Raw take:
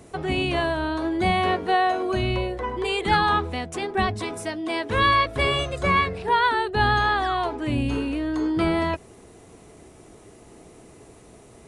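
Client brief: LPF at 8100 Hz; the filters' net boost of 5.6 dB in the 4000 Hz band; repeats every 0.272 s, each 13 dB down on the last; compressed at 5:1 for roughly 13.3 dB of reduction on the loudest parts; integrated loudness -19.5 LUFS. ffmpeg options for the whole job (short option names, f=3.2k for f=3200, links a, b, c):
-af "lowpass=8.1k,equalizer=f=4k:t=o:g=7.5,acompressor=threshold=-30dB:ratio=5,aecho=1:1:272|544|816:0.224|0.0493|0.0108,volume=12.5dB"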